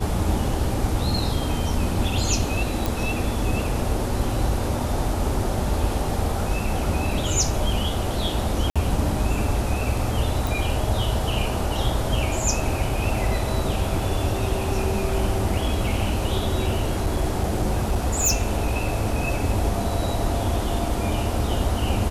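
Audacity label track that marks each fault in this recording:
2.860000	2.860000	pop
8.700000	8.760000	gap 56 ms
10.470000	10.470000	pop
16.640000	19.210000	clipped -16 dBFS

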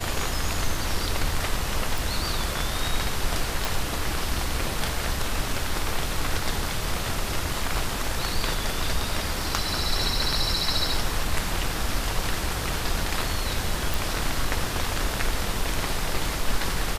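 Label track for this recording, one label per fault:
1.980000	1.980000	pop
3.650000	3.650000	pop
13.940000	13.940000	pop

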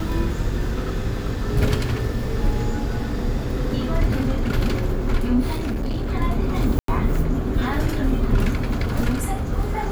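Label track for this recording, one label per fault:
5.520000	6.110000	clipped -21 dBFS
6.790000	6.880000	gap 93 ms

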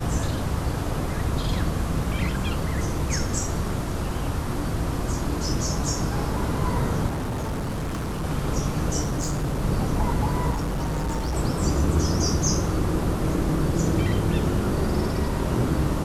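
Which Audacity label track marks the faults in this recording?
7.070000	8.250000	clipped -25 dBFS
9.010000	9.650000	clipped -21.5 dBFS
10.500000	11.360000	clipped -23 dBFS

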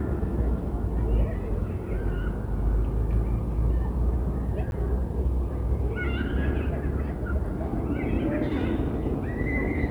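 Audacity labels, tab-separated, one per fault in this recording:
4.710000	4.720000	gap

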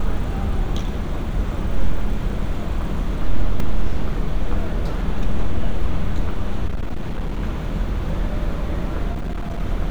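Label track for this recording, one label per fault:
3.600000	3.600000	gap 2.7 ms
6.680000	7.420000	clipped -19 dBFS
9.120000	9.610000	clipped -21.5 dBFS

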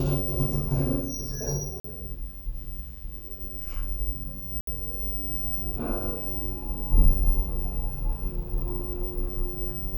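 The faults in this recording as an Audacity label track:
1.800000	1.840000	gap 44 ms
4.610000	4.670000	gap 63 ms

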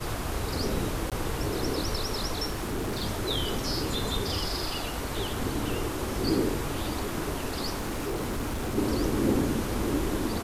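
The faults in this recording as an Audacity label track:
1.100000	1.120000	gap 17 ms
2.500000	3.040000	clipped -27 dBFS
7.760000	8.780000	clipped -27 dBFS

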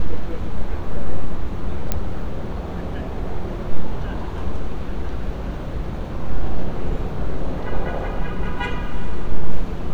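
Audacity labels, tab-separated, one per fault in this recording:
1.920000	1.920000	pop -6 dBFS

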